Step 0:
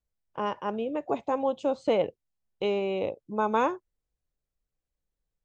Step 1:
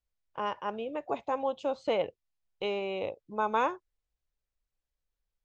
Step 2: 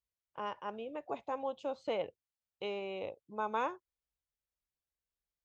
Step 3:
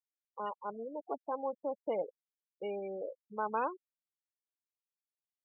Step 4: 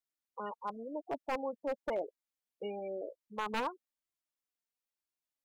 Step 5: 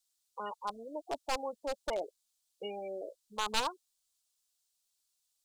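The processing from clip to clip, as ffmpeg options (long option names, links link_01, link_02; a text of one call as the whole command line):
ffmpeg -i in.wav -af "lowpass=6100,equalizer=frequency=220:width_type=o:width=2.6:gain=-8" out.wav
ffmpeg -i in.wav -af "highpass=54,volume=-6.5dB" out.wav
ffmpeg -i in.wav -filter_complex "[0:a]acrossover=split=2700[link_01][link_02];[link_02]acompressor=threshold=-58dB:ratio=4:attack=1:release=60[link_03];[link_01][link_03]amix=inputs=2:normalize=0,afftfilt=real='re*gte(hypot(re,im),0.02)':imag='im*gte(hypot(re,im),0.02)':win_size=1024:overlap=0.75,volume=1dB" out.wav
ffmpeg -i in.wav -af "flanger=delay=2.8:depth=1.7:regen=23:speed=0.97:shape=triangular,aeval=exprs='0.0251*(abs(mod(val(0)/0.0251+3,4)-2)-1)':channel_layout=same,volume=4.5dB" out.wav
ffmpeg -i in.wav -af "equalizer=frequency=125:width_type=o:width=1:gain=-12,equalizer=frequency=250:width_type=o:width=1:gain=-11,equalizer=frequency=500:width_type=o:width=1:gain=-7,equalizer=frequency=1000:width_type=o:width=1:gain=-4,equalizer=frequency=2000:width_type=o:width=1:gain=-10,equalizer=frequency=4000:width_type=o:width=1:gain=6,equalizer=frequency=8000:width_type=o:width=1:gain=8,volume=9dB" out.wav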